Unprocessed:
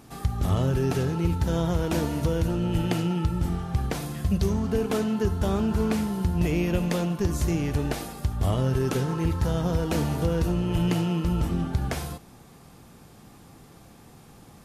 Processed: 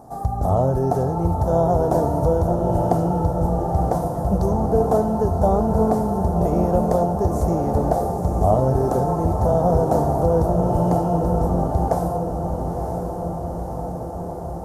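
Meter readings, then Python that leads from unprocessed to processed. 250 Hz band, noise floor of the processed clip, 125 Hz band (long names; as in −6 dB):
+4.0 dB, −29 dBFS, +4.0 dB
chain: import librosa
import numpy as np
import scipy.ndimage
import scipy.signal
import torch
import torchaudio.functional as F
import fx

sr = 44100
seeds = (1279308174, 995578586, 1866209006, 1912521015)

y = fx.curve_eq(x, sr, hz=(360.0, 720.0, 2600.0, 5800.0, 9400.0), db=(0, 15, -25, -8, -5))
y = fx.echo_diffused(y, sr, ms=967, feedback_pct=72, wet_db=-7)
y = F.gain(torch.from_numpy(y), 2.5).numpy()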